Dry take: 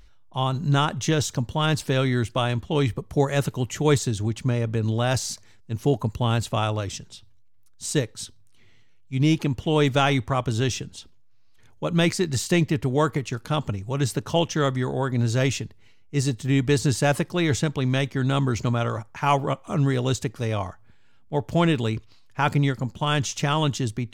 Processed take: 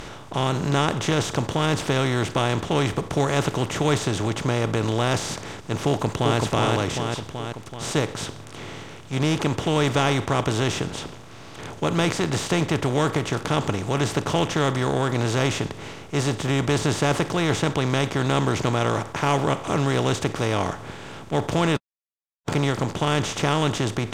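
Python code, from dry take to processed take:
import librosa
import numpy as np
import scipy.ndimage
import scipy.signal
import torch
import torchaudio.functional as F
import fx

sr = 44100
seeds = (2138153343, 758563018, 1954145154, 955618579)

y = fx.echo_throw(x, sr, start_s=5.87, length_s=0.51, ms=380, feedback_pct=30, wet_db=-3.0)
y = fx.edit(y, sr, fx.silence(start_s=21.77, length_s=0.71), tone=tone)
y = fx.bin_compress(y, sr, power=0.4)
y = fx.high_shelf(y, sr, hz=11000.0, db=-7.0)
y = F.gain(torch.from_numpy(y), -5.5).numpy()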